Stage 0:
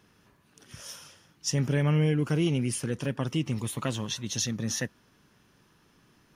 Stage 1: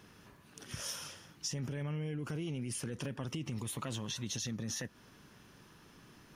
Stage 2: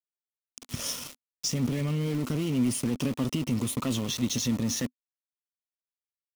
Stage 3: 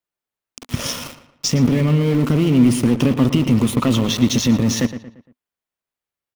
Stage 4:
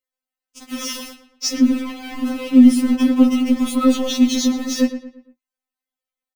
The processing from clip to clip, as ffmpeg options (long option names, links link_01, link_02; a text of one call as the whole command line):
ffmpeg -i in.wav -af "alimiter=level_in=1.5dB:limit=-24dB:level=0:latency=1:release=25,volume=-1.5dB,acompressor=threshold=-40dB:ratio=6,volume=4dB" out.wav
ffmpeg -i in.wav -af "aeval=exprs='val(0)*gte(abs(val(0)),0.0075)':channel_layout=same,equalizer=frequency=250:width_type=o:width=0.33:gain=10,equalizer=frequency=800:width_type=o:width=0.33:gain=-4,equalizer=frequency=1600:width_type=o:width=0.33:gain=-9,volume=8.5dB" out.wav
ffmpeg -i in.wav -filter_complex "[0:a]asplit=2[link_01][link_02];[link_02]adynamicsmooth=sensitivity=3.5:basefreq=3400,volume=3dB[link_03];[link_01][link_03]amix=inputs=2:normalize=0,asplit=2[link_04][link_05];[link_05]adelay=115,lowpass=frequency=3200:poles=1,volume=-11.5dB,asplit=2[link_06][link_07];[link_07]adelay=115,lowpass=frequency=3200:poles=1,volume=0.41,asplit=2[link_08][link_09];[link_09]adelay=115,lowpass=frequency=3200:poles=1,volume=0.41,asplit=2[link_10][link_11];[link_11]adelay=115,lowpass=frequency=3200:poles=1,volume=0.41[link_12];[link_04][link_06][link_08][link_10][link_12]amix=inputs=5:normalize=0,volume=5dB" out.wav
ffmpeg -i in.wav -filter_complex "[0:a]asplit=2[link_01][link_02];[link_02]adelay=17,volume=-10dB[link_03];[link_01][link_03]amix=inputs=2:normalize=0,afftfilt=real='re*3.46*eq(mod(b,12),0)':imag='im*3.46*eq(mod(b,12),0)':win_size=2048:overlap=0.75" out.wav